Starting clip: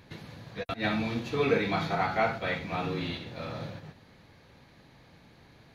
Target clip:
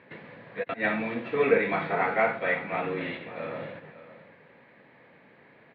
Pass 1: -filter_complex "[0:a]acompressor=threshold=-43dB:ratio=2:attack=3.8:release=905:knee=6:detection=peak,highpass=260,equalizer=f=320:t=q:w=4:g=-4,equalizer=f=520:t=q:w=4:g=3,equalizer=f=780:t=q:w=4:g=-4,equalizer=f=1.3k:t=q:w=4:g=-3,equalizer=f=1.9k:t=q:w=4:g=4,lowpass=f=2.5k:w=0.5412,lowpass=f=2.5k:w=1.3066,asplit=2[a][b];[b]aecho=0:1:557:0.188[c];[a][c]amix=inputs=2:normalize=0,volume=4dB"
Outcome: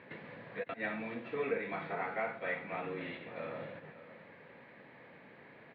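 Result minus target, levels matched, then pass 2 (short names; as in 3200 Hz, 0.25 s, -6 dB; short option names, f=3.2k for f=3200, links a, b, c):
compressor: peak gain reduction +14 dB
-filter_complex "[0:a]highpass=260,equalizer=f=320:t=q:w=4:g=-4,equalizer=f=520:t=q:w=4:g=3,equalizer=f=780:t=q:w=4:g=-4,equalizer=f=1.3k:t=q:w=4:g=-3,equalizer=f=1.9k:t=q:w=4:g=4,lowpass=f=2.5k:w=0.5412,lowpass=f=2.5k:w=1.3066,asplit=2[a][b];[b]aecho=0:1:557:0.188[c];[a][c]amix=inputs=2:normalize=0,volume=4dB"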